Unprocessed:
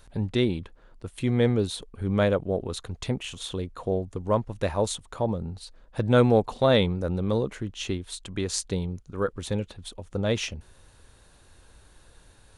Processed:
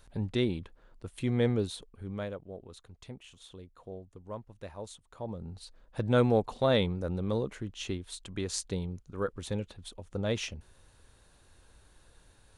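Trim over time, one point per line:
1.59 s -5 dB
2.40 s -17 dB
5.01 s -17 dB
5.60 s -5.5 dB

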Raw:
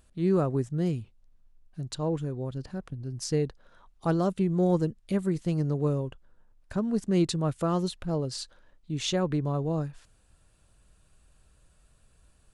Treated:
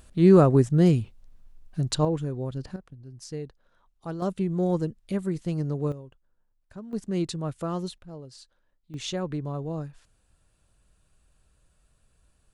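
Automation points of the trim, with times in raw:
+9 dB
from 2.05 s +2 dB
from 2.76 s -8.5 dB
from 4.22 s -1 dB
from 5.92 s -12 dB
from 6.93 s -3.5 dB
from 7.98 s -12.5 dB
from 8.94 s -3.5 dB

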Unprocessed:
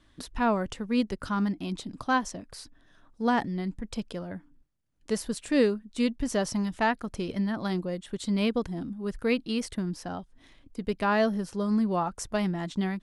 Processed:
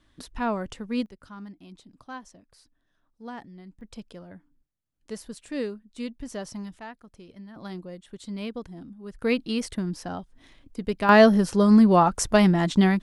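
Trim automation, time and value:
-2 dB
from 1.06 s -14 dB
from 3.81 s -7.5 dB
from 6.79 s -15.5 dB
from 7.56 s -7.5 dB
from 9.22 s +2 dB
from 11.09 s +10 dB

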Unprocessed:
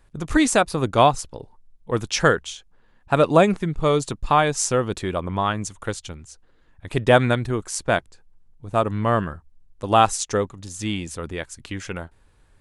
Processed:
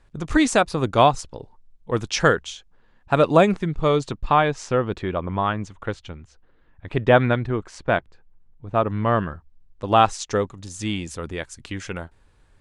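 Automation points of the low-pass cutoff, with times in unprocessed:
3.52 s 7.1 kHz
4.66 s 2.9 kHz
8.84 s 2.9 kHz
9.27 s 4.8 kHz
10.14 s 4.8 kHz
10.60 s 8.9 kHz

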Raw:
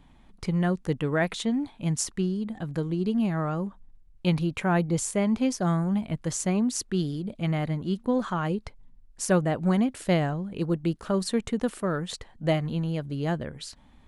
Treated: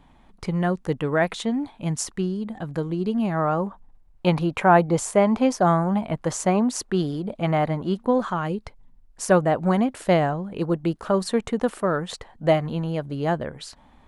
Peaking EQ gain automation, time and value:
peaking EQ 820 Hz 2.2 oct
3.21 s +6 dB
3.61 s +13 dB
7.93 s +13 dB
8.46 s +2 dB
9.22 s +8.5 dB

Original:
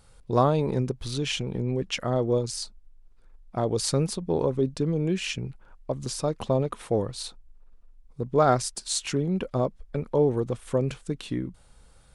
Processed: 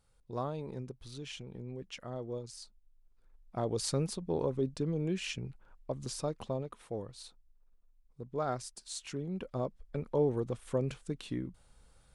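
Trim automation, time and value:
2.58 s -15.5 dB
3.60 s -7.5 dB
6.22 s -7.5 dB
6.69 s -14 dB
8.91 s -14 dB
10.01 s -7 dB

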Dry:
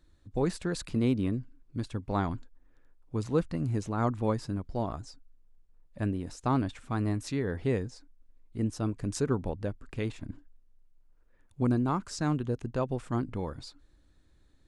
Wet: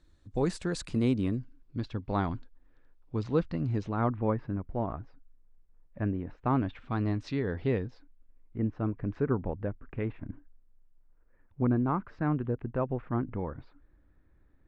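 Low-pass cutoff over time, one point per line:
low-pass 24 dB/octave
1.13 s 9.6 kHz
1.77 s 4.8 kHz
3.79 s 4.8 kHz
4.20 s 2.3 kHz
6.38 s 2.3 kHz
7.02 s 4.5 kHz
7.64 s 4.5 kHz
8.57 s 2.2 kHz

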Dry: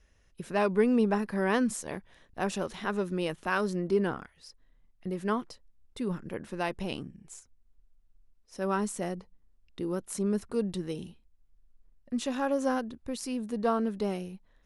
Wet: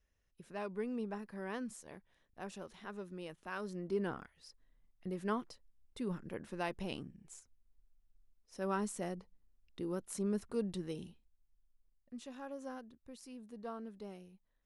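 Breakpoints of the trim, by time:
3.43 s -15 dB
4.22 s -6.5 dB
11.04 s -6.5 dB
12.27 s -17 dB

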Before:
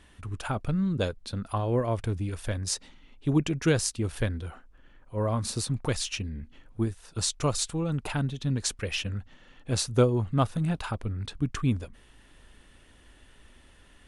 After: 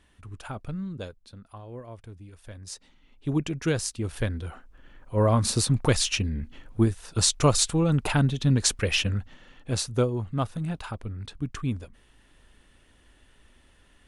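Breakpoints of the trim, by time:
0.76 s -6 dB
1.50 s -14.5 dB
2.34 s -14.5 dB
3.28 s -2 dB
3.86 s -2 dB
5.19 s +6.5 dB
9.04 s +6.5 dB
10.09 s -3 dB

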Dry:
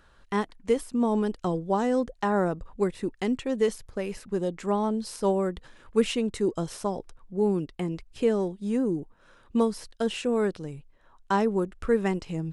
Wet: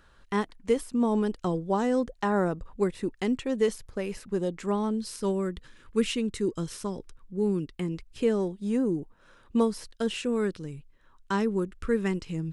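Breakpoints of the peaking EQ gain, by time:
peaking EQ 710 Hz 0.82 oct
4.51 s -2.5 dB
5.17 s -13.5 dB
7.50 s -13.5 dB
8.57 s -2 dB
9.72 s -2 dB
10.44 s -11.5 dB

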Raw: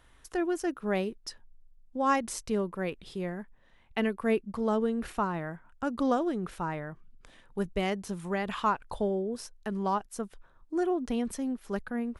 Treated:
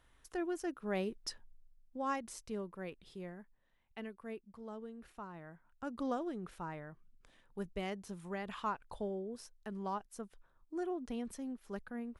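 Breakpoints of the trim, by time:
0.90 s -8 dB
1.25 s -1 dB
2.17 s -11.5 dB
3.20 s -11.5 dB
4.41 s -19 dB
5.13 s -19 dB
5.91 s -10 dB

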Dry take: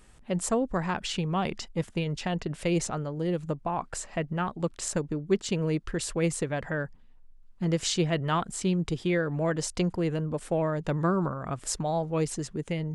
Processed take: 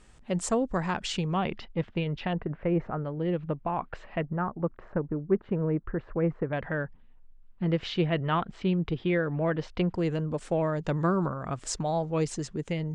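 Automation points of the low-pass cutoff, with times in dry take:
low-pass 24 dB/octave
8.6 kHz
from 1.37 s 3.5 kHz
from 2.33 s 1.8 kHz
from 3.05 s 3.1 kHz
from 4.21 s 1.6 kHz
from 6.53 s 3.4 kHz
from 9.94 s 7.8 kHz

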